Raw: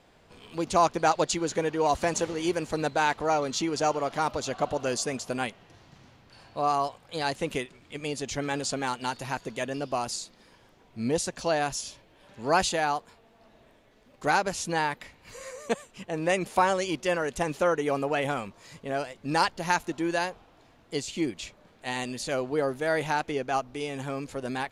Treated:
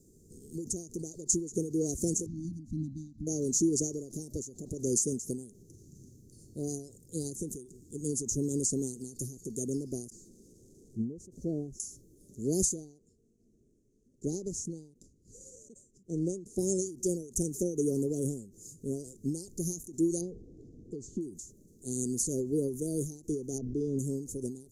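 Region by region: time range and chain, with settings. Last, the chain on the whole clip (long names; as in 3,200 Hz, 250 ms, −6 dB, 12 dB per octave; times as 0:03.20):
0:02.26–0:03.27: linear-phase brick-wall band-stop 310–3,500 Hz + high-frequency loss of the air 330 metres
0:10.10–0:11.80: spike at every zero crossing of −26 dBFS + low-pass filter 1,200 Hz
0:12.74–0:16.59: mu-law and A-law mismatch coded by A + high-frequency loss of the air 88 metres
0:20.21–0:21.21: mu-law and A-law mismatch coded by mu + low-pass filter 2,300 Hz + parametric band 470 Hz +3.5 dB 0.23 octaves
0:23.58–0:23.99: high-frequency loss of the air 260 metres + envelope flattener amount 50%
whole clip: Chebyshev band-stop filter 400–6,400 Hz, order 4; tilt shelving filter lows −3.5 dB; every ending faded ahead of time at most 110 dB per second; level +6.5 dB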